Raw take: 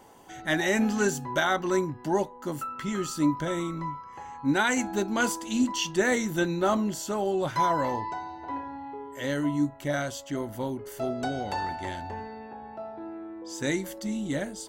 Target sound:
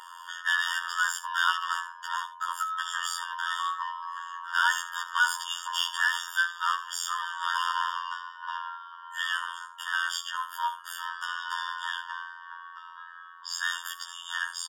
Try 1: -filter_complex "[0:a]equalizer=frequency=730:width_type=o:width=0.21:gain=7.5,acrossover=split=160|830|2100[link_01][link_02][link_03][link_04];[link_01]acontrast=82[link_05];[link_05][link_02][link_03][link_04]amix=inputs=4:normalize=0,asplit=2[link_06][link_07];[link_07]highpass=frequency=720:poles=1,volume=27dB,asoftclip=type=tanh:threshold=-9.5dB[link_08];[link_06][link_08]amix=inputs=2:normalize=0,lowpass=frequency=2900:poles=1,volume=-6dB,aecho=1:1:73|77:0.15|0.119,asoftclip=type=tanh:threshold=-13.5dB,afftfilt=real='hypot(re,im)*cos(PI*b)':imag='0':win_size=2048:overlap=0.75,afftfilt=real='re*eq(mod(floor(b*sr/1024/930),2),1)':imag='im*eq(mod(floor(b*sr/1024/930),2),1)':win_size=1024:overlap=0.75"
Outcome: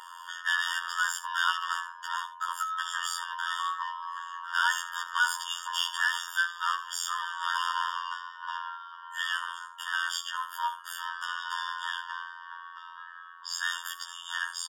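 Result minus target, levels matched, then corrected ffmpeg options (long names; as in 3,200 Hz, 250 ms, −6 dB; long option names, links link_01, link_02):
soft clipping: distortion +21 dB
-filter_complex "[0:a]equalizer=frequency=730:width_type=o:width=0.21:gain=7.5,acrossover=split=160|830|2100[link_01][link_02][link_03][link_04];[link_01]acontrast=82[link_05];[link_05][link_02][link_03][link_04]amix=inputs=4:normalize=0,asplit=2[link_06][link_07];[link_07]highpass=frequency=720:poles=1,volume=27dB,asoftclip=type=tanh:threshold=-9.5dB[link_08];[link_06][link_08]amix=inputs=2:normalize=0,lowpass=frequency=2900:poles=1,volume=-6dB,aecho=1:1:73|77:0.15|0.119,asoftclip=type=tanh:threshold=-2dB,afftfilt=real='hypot(re,im)*cos(PI*b)':imag='0':win_size=2048:overlap=0.75,afftfilt=real='re*eq(mod(floor(b*sr/1024/930),2),1)':imag='im*eq(mod(floor(b*sr/1024/930),2),1)':win_size=1024:overlap=0.75"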